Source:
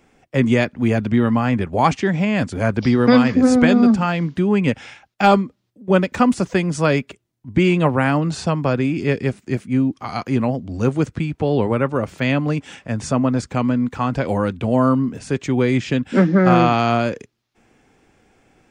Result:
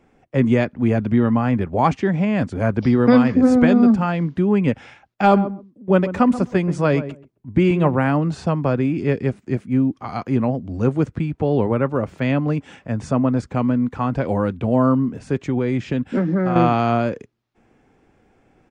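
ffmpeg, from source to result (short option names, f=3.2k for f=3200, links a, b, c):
-filter_complex "[0:a]asplit=3[a][b][c];[a]afade=t=out:st=5.31:d=0.02[d];[b]asplit=2[e][f];[f]adelay=131,lowpass=f=840:p=1,volume=-11dB,asplit=2[g][h];[h]adelay=131,lowpass=f=840:p=1,volume=0.17[i];[e][g][i]amix=inputs=3:normalize=0,afade=t=in:st=5.31:d=0.02,afade=t=out:st=7.94:d=0.02[j];[c]afade=t=in:st=7.94:d=0.02[k];[d][j][k]amix=inputs=3:normalize=0,asettb=1/sr,asplit=3[l][m][n];[l]atrim=end=15.394[o];[m]atrim=start=15.39:end=16.56,asetpts=PTS-STARTPTS,afade=t=in:d=0.004:c=qsin,afade=t=out:st=1.166:d=0.004:c=qsin,acompressor=threshold=-15dB:ratio=6:attack=3.2:release=140:knee=1:detection=peak[p];[n]atrim=start=16.556[q];[o][p]acrossfade=d=0.004:c1=hsin:c2=qsin[r];[r][q]acrossfade=d=0.004:c1=qsin:c2=hsin,highshelf=f=2.4k:g=-11.5"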